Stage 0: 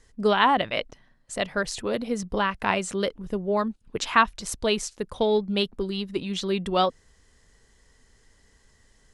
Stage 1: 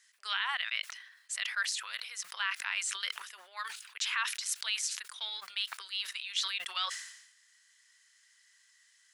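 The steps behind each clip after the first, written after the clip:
inverse Chebyshev high-pass filter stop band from 260 Hz, stop band 80 dB
brickwall limiter −20.5 dBFS, peak gain reduction 11 dB
level that may fall only so fast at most 66 dB per second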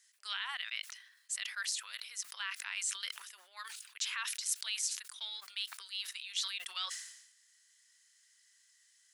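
high-shelf EQ 3,700 Hz +11 dB
level −9 dB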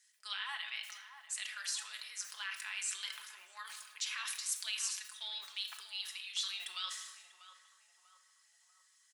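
comb filter 4.7 ms, depth 51%
feedback echo with a band-pass in the loop 642 ms, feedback 50%, band-pass 790 Hz, level −10.5 dB
rectangular room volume 570 cubic metres, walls mixed, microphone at 0.77 metres
level −3.5 dB

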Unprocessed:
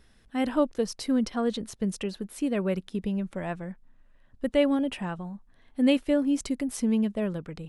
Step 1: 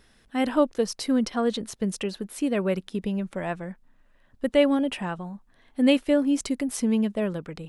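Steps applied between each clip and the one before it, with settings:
low-shelf EQ 170 Hz −7 dB
level +4 dB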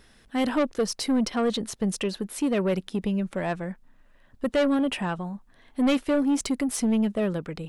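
soft clipping −21 dBFS, distortion −10 dB
level +3 dB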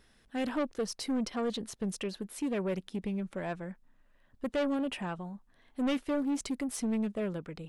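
highs frequency-modulated by the lows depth 0.16 ms
level −8 dB

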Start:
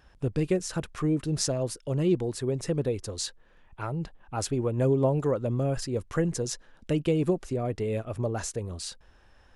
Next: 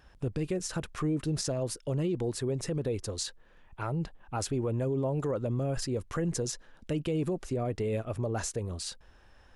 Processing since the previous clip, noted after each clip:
brickwall limiter −23 dBFS, peak gain reduction 10.5 dB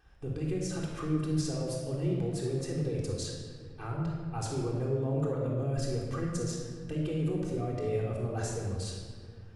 rectangular room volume 2,400 cubic metres, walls mixed, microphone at 3.7 metres
level −8.5 dB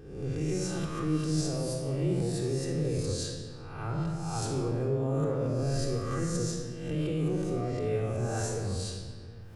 peak hold with a rise ahead of every peak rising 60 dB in 0.84 s

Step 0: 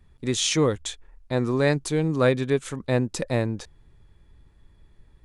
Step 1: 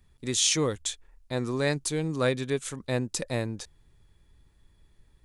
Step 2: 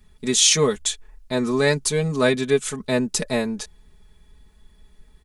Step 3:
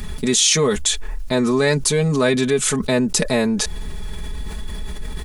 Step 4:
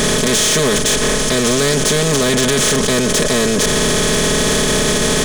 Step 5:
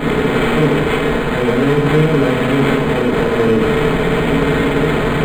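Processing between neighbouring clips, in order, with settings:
high-shelf EQ 3,500 Hz +10.5 dB; level −6 dB
comb filter 4.7 ms, depth 85%; level +5.5 dB
envelope flattener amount 70%; level −1 dB
compressor on every frequency bin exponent 0.2; in parallel at −1 dB: brickwall limiter −5 dBFS, peak gain reduction 9.5 dB; on the sum: soft clipping −5.5 dBFS, distortion −12 dB; level −4 dB
hearing-aid frequency compression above 3,800 Hz 1.5 to 1; feedback delay network reverb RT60 0.67 s, low-frequency decay 1.3×, high-frequency decay 0.95×, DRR −9 dB; linearly interpolated sample-rate reduction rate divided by 8×; level −9 dB

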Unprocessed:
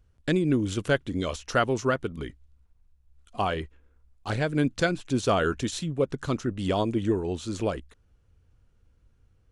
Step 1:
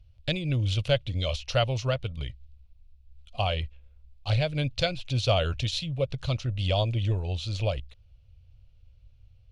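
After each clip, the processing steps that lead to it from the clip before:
drawn EQ curve 120 Hz 0 dB, 210 Hz −19 dB, 390 Hz −22 dB, 570 Hz −5 dB, 1,000 Hz −15 dB, 1,700 Hz −17 dB, 2,500 Hz −1 dB, 4,400 Hz −1 dB, 7,800 Hz −18 dB, 11,000 Hz −15 dB
level +7.5 dB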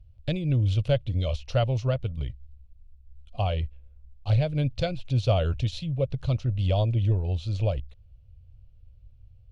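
tilt shelving filter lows +6 dB, about 890 Hz
level −2.5 dB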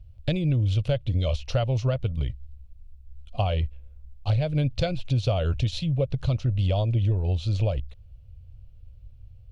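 downward compressor, threshold −25 dBFS, peak gain reduction 8 dB
level +5 dB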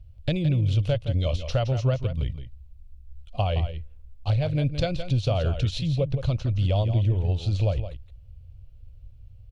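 single-tap delay 168 ms −10 dB

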